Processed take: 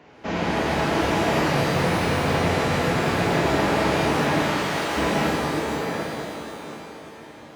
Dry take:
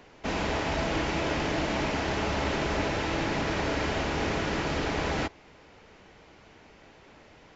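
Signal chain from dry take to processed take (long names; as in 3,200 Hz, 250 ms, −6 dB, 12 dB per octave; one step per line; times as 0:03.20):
on a send: tape delay 745 ms, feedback 36%, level −3 dB, low-pass 1,300 Hz
0:01.45–0:03.25: on the sum: frequency shifter −160 Hz
high-pass filter 87 Hz 12 dB per octave
high-shelf EQ 4,300 Hz −10.5 dB
flanger 0.69 Hz, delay 6.2 ms, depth 9 ms, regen +67%
0:04.42–0:04.97: low-shelf EQ 460 Hz −12 dB
reverb with rising layers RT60 2.2 s, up +12 semitones, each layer −8 dB, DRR −3.5 dB
level +6 dB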